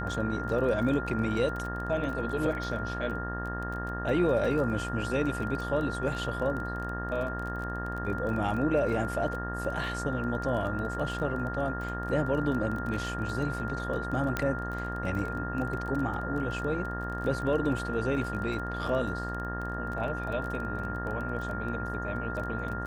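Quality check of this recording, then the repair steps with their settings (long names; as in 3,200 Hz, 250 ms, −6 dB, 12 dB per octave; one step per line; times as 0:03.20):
mains buzz 60 Hz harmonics 31 −36 dBFS
surface crackle 24 per second −35 dBFS
whistle 1,400 Hz −36 dBFS
0:14.37: click −15 dBFS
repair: click removal
notch filter 1,400 Hz, Q 30
hum removal 60 Hz, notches 31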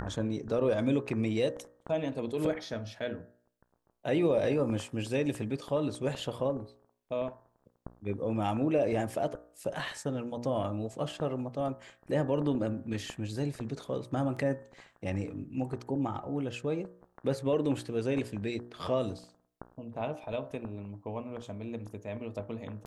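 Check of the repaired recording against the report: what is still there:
0:14.37: click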